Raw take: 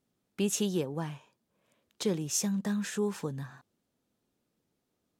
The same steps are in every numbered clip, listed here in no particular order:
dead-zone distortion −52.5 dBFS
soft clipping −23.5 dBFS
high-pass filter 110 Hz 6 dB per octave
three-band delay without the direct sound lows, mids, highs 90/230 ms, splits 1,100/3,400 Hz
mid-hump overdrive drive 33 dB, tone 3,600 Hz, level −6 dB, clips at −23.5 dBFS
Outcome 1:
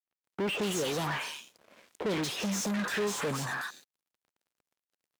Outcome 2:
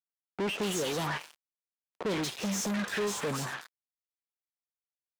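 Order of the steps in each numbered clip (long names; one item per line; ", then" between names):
three-band delay without the direct sound, then soft clipping, then mid-hump overdrive, then dead-zone distortion, then high-pass filter
three-band delay without the direct sound, then dead-zone distortion, then mid-hump overdrive, then high-pass filter, then soft clipping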